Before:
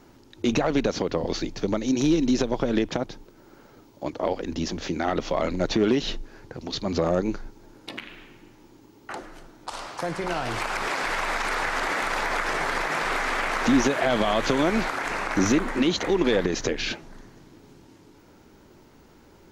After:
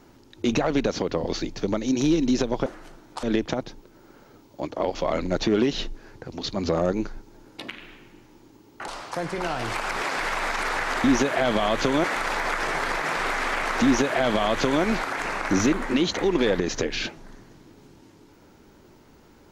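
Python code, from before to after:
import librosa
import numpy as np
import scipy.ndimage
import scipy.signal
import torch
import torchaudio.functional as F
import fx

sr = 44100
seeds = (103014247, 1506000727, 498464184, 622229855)

y = fx.edit(x, sr, fx.cut(start_s=4.38, length_s=0.86),
    fx.move(start_s=9.17, length_s=0.57, to_s=2.66),
    fx.duplicate(start_s=13.69, length_s=1.0, to_s=11.9), tone=tone)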